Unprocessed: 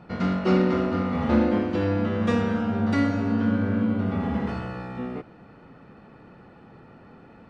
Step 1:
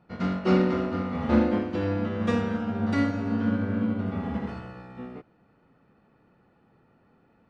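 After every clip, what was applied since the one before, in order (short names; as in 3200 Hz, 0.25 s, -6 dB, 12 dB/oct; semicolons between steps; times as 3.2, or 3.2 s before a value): upward expander 1.5:1, over -44 dBFS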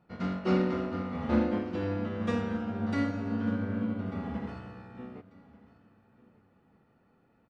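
feedback echo 1.192 s, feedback 23%, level -21 dB; gain -5 dB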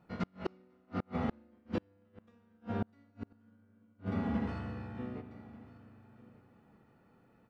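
spring tank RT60 3.1 s, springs 40/58 ms, chirp 55 ms, DRR 11 dB; flipped gate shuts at -23 dBFS, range -37 dB; gain +1 dB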